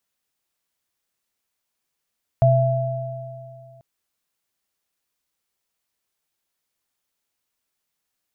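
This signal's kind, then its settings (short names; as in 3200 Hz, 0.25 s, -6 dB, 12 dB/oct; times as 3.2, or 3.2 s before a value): sine partials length 1.39 s, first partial 128 Hz, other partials 668 Hz, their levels -1 dB, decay 2.32 s, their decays 2.45 s, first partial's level -13 dB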